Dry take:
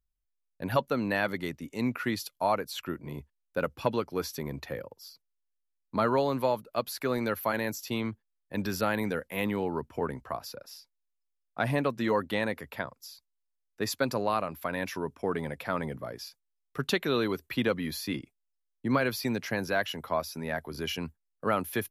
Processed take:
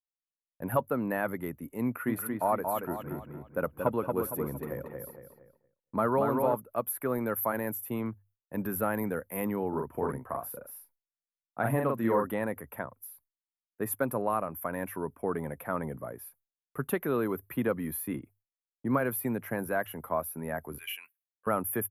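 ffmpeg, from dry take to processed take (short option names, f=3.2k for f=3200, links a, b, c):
-filter_complex "[0:a]asplit=3[a][b][c];[a]afade=t=out:st=2.07:d=0.02[d];[b]asplit=2[e][f];[f]adelay=230,lowpass=f=3.8k:p=1,volume=-4dB,asplit=2[g][h];[h]adelay=230,lowpass=f=3.8k:p=1,volume=0.39,asplit=2[i][j];[j]adelay=230,lowpass=f=3.8k:p=1,volume=0.39,asplit=2[k][l];[l]adelay=230,lowpass=f=3.8k:p=1,volume=0.39,asplit=2[m][n];[n]adelay=230,lowpass=f=3.8k:p=1,volume=0.39[o];[e][g][i][k][m][o]amix=inputs=6:normalize=0,afade=t=in:st=2.07:d=0.02,afade=t=out:st=6.54:d=0.02[p];[c]afade=t=in:st=6.54:d=0.02[q];[d][p][q]amix=inputs=3:normalize=0,asplit=3[r][s][t];[r]afade=t=out:st=9.72:d=0.02[u];[s]asplit=2[v][w];[w]adelay=44,volume=-3dB[x];[v][x]amix=inputs=2:normalize=0,afade=t=in:st=9.72:d=0.02,afade=t=out:st=12.29:d=0.02[y];[t]afade=t=in:st=12.29:d=0.02[z];[u][y][z]amix=inputs=3:normalize=0,asettb=1/sr,asplit=3[aa][ab][ac];[aa]atrim=end=20.784[ad];[ab]atrim=start=20.78:end=21.47,asetpts=PTS-STARTPTS,afade=t=in:d=0.004:c=qsin,afade=t=out:st=0.686:d=0.004:c=qsin,highpass=f=2.5k:t=q:w=4.4[ae];[ac]atrim=start=21.466[af];[ad][ae]acrossfade=d=0.004:c1=hsin:c2=qsin[ag];[ag][af]acrossfade=d=0.004:c1=qsin:c2=hsin,bandreject=f=50:t=h:w=6,bandreject=f=100:t=h:w=6,agate=range=-33dB:threshold=-56dB:ratio=3:detection=peak,firequalizer=gain_entry='entry(1200,0);entry(4700,-28);entry(11000,9)':delay=0.05:min_phase=1,volume=-1dB"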